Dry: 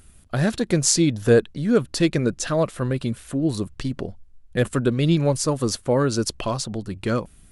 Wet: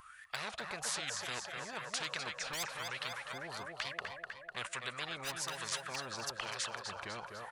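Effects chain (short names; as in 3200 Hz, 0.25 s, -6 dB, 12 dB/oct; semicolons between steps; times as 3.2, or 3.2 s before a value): wah 1.1 Hz 570–1800 Hz, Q 21; wow and flutter 110 cents; in parallel at -9 dB: overloaded stage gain 33 dB; on the sum: passive tone stack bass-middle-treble 10-0-10; on a send: feedback echo 0.25 s, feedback 54%, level -12 dB; on the sum: spectral compressor 10:1; gain +11 dB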